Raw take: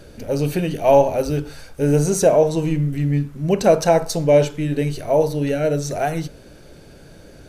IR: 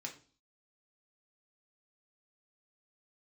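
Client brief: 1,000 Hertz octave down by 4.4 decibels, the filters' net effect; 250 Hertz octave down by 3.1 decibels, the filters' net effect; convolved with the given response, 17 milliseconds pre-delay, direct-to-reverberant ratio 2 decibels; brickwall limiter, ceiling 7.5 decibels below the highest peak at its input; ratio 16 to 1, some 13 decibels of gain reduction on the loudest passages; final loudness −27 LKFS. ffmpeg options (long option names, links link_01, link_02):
-filter_complex "[0:a]equalizer=frequency=250:width_type=o:gain=-4.5,equalizer=frequency=1000:width_type=o:gain=-6.5,acompressor=threshold=-24dB:ratio=16,alimiter=limit=-23dB:level=0:latency=1,asplit=2[link_01][link_02];[1:a]atrim=start_sample=2205,adelay=17[link_03];[link_02][link_03]afir=irnorm=-1:irlink=0,volume=0dB[link_04];[link_01][link_04]amix=inputs=2:normalize=0,volume=3dB"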